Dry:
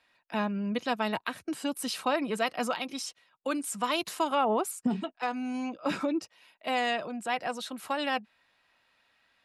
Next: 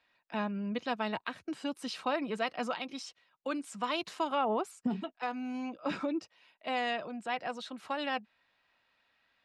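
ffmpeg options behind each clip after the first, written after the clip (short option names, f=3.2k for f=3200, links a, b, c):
-af "lowpass=5.4k,volume=-4dB"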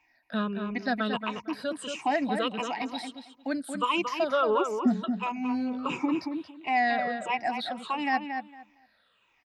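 -filter_complex "[0:a]afftfilt=real='re*pow(10,21/40*sin(2*PI*(0.71*log(max(b,1)*sr/1024/100)/log(2)-(-1.5)*(pts-256)/sr)))':imag='im*pow(10,21/40*sin(2*PI*(0.71*log(max(b,1)*sr/1024/100)/log(2)-(-1.5)*(pts-256)/sr)))':win_size=1024:overlap=0.75,asplit=2[a][b];[b]adelay=228,lowpass=f=2.9k:p=1,volume=-6dB,asplit=2[c][d];[d]adelay=228,lowpass=f=2.9k:p=1,volume=0.19,asplit=2[e][f];[f]adelay=228,lowpass=f=2.9k:p=1,volume=0.19[g];[c][e][g]amix=inputs=3:normalize=0[h];[a][h]amix=inputs=2:normalize=0"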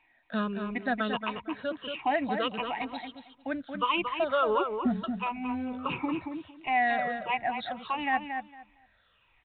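-af "asubboost=boost=8.5:cutoff=87" -ar 8000 -c:a pcm_mulaw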